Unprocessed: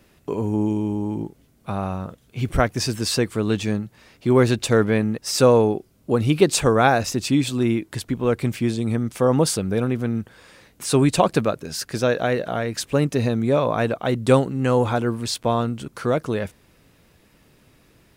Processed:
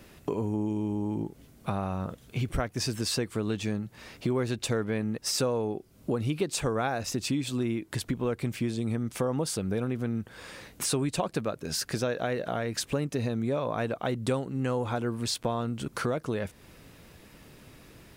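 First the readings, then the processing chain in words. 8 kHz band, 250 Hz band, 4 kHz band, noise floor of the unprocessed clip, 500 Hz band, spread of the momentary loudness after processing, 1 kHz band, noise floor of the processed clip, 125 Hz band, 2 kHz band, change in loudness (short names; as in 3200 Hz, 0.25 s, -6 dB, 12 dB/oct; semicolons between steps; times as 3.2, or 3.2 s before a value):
-6.0 dB, -9.0 dB, -6.0 dB, -58 dBFS, -10.5 dB, 6 LU, -10.5 dB, -56 dBFS, -8.5 dB, -9.5 dB, -9.5 dB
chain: compressor 4:1, threshold -33 dBFS, peak gain reduction 19 dB; gain +4 dB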